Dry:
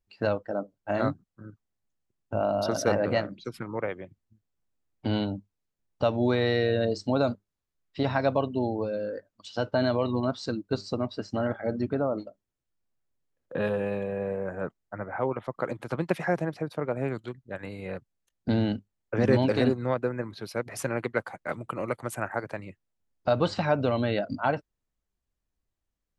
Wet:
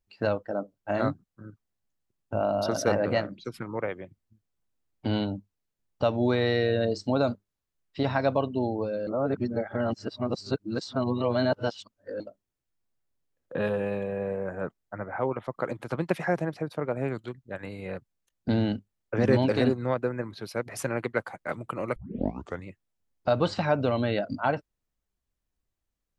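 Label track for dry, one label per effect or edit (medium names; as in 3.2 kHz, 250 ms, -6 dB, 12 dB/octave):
9.070000	12.200000	reverse
21.960000	21.960000	tape start 0.71 s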